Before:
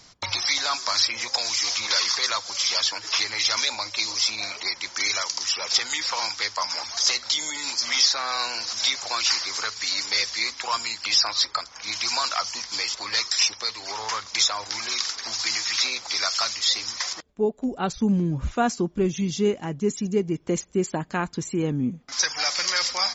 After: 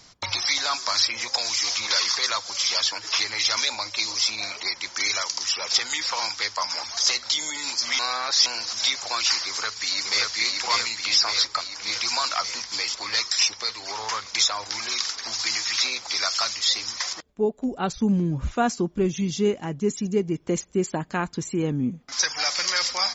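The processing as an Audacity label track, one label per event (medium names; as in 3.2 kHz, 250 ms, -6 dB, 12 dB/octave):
7.990000	8.460000	reverse
9.470000	10.310000	echo throw 580 ms, feedback 65%, level -2 dB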